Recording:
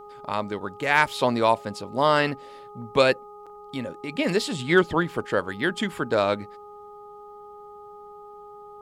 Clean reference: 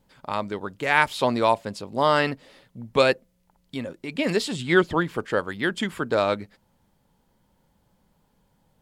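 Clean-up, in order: clip repair -5.5 dBFS; de-hum 413.7 Hz, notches 3; interpolate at 3.46, 6 ms

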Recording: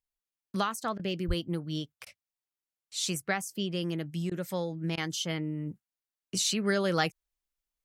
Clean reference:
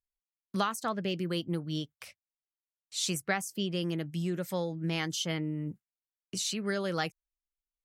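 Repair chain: de-plosive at 1.27; interpolate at 0.52/0.98/2.05/4.3/4.96, 13 ms; gain correction -4.5 dB, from 6.34

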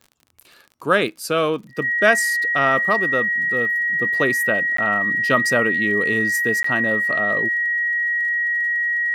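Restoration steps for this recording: de-click; notch 1900 Hz, Q 30; interpolate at 4.77/6.63, 14 ms

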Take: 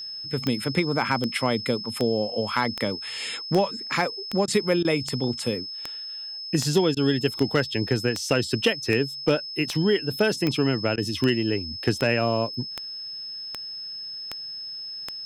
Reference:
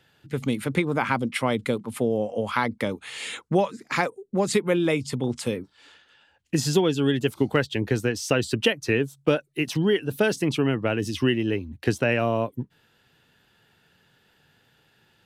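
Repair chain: clip repair -11 dBFS; de-click; notch 5200 Hz, Q 30; interpolate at 4.46/4.83/6.95/10.96, 16 ms

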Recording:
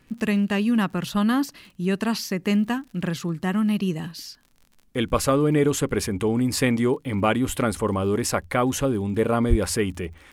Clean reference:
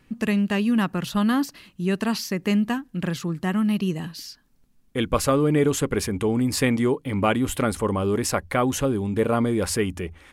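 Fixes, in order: de-click; de-plosive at 9.49

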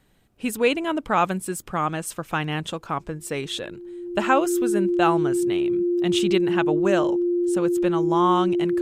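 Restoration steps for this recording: notch 350 Hz, Q 30

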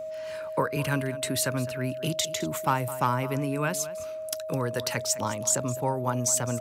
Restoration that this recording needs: clip repair -13 dBFS; notch 630 Hz, Q 30; inverse comb 0.21 s -16.5 dB

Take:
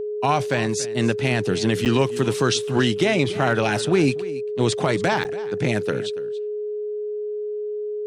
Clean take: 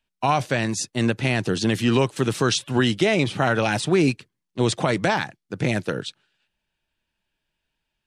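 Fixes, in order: clip repair -9 dBFS; notch 420 Hz, Q 30; interpolate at 1.85/5.24, 8.8 ms; inverse comb 0.283 s -17 dB

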